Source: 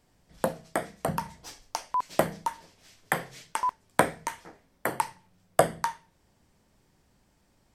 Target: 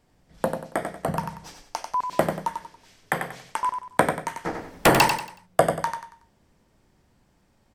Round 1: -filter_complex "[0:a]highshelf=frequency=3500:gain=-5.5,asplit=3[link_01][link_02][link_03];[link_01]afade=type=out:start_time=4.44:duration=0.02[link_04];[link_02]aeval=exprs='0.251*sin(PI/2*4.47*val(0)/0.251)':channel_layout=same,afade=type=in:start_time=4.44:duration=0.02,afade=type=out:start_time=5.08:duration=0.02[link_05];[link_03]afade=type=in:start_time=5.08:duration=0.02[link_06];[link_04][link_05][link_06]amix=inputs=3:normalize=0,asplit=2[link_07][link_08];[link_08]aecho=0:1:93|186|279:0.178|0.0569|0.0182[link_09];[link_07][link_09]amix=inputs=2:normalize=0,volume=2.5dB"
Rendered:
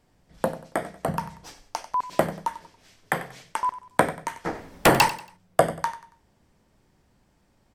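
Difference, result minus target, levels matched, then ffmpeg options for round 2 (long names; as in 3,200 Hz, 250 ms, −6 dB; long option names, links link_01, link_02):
echo-to-direct −8.5 dB
-filter_complex "[0:a]highshelf=frequency=3500:gain=-5.5,asplit=3[link_01][link_02][link_03];[link_01]afade=type=out:start_time=4.44:duration=0.02[link_04];[link_02]aeval=exprs='0.251*sin(PI/2*4.47*val(0)/0.251)':channel_layout=same,afade=type=in:start_time=4.44:duration=0.02,afade=type=out:start_time=5.08:duration=0.02[link_05];[link_03]afade=type=in:start_time=5.08:duration=0.02[link_06];[link_04][link_05][link_06]amix=inputs=3:normalize=0,asplit=2[link_07][link_08];[link_08]aecho=0:1:93|186|279|372:0.473|0.151|0.0485|0.0155[link_09];[link_07][link_09]amix=inputs=2:normalize=0,volume=2.5dB"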